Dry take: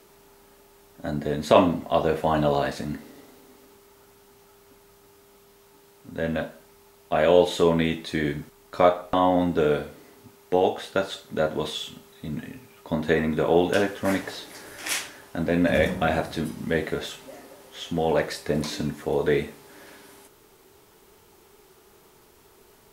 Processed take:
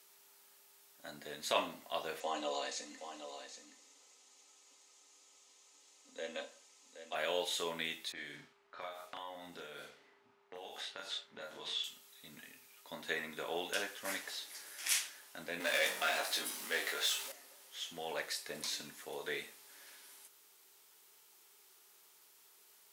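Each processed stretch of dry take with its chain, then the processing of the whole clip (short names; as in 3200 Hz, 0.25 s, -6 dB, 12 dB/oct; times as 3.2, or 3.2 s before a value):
2.2–7.15 speaker cabinet 290–8100 Hz, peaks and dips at 300 Hz +5 dB, 490 Hz +5 dB, 1500 Hz -8 dB, 6800 Hz +8 dB + comb 3.9 ms, depth 56% + echo 0.772 s -10 dB
8.12–11.84 low-pass opened by the level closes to 1400 Hz, open at -18.5 dBFS + compressor, threshold -27 dBFS + doubler 35 ms -2 dB
15.6–17.32 HPF 350 Hz + power-law curve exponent 0.7 + doubler 20 ms -4.5 dB
whole clip: LPF 3800 Hz 6 dB/oct; differentiator; gain +3 dB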